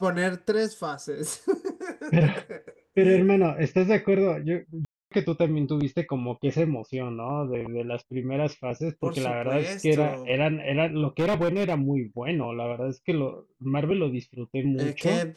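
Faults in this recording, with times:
4.85–5.12 s: dropout 265 ms
11.19–11.77 s: clipped -20 dBFS

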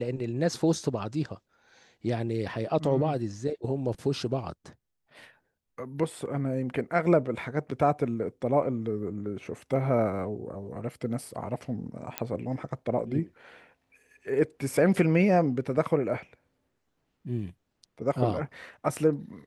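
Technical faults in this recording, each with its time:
12.18 s: pop -11 dBFS

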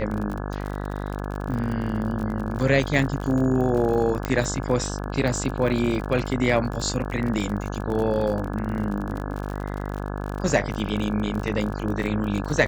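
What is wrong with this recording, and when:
buzz 50 Hz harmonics 34 -30 dBFS
crackle 45 per s -29 dBFS
2.99 s: dropout 3.4 ms
4.25 s: pop -11 dBFS

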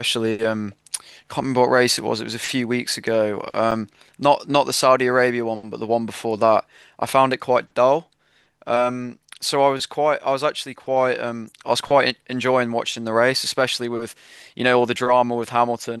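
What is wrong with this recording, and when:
3.71–3.72 s: dropout 6.1 ms

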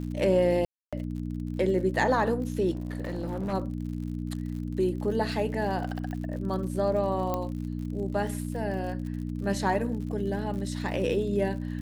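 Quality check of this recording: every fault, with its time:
crackle 77 per s -38 dBFS
hum 60 Hz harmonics 5 -33 dBFS
0.65–0.93 s: dropout 276 ms
2.71–3.54 s: clipped -27.5 dBFS
6.11 s: pop -25 dBFS
7.34 s: pop -16 dBFS

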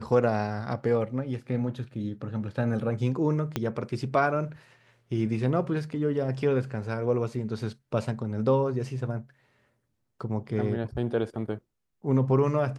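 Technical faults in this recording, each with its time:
3.56 s: pop -13 dBFS

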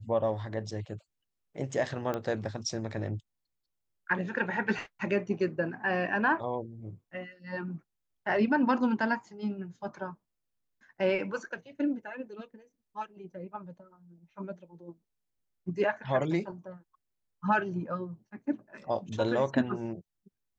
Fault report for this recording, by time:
2.14 s: pop -20 dBFS

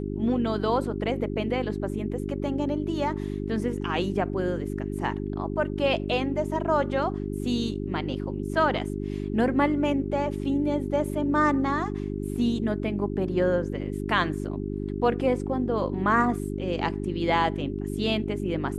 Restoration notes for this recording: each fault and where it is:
hum 50 Hz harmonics 8 -31 dBFS

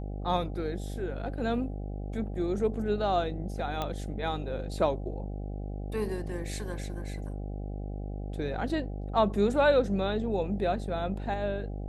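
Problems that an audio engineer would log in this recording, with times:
buzz 50 Hz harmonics 16 -36 dBFS
3.82 s: pop -18 dBFS

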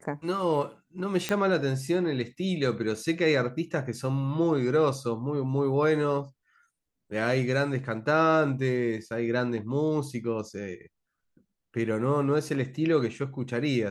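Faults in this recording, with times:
1.29 s: pop -12 dBFS

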